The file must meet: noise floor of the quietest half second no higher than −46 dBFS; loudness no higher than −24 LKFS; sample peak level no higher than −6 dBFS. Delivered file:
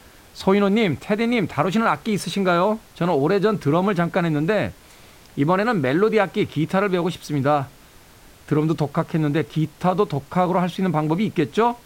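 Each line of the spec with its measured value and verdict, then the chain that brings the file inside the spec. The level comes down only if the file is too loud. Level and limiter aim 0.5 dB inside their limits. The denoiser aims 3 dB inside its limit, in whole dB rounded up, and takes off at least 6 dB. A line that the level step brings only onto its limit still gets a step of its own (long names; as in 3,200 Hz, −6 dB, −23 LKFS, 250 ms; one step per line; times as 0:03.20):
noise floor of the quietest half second −48 dBFS: in spec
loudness −21.0 LKFS: out of spec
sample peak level −5.0 dBFS: out of spec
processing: level −3.5 dB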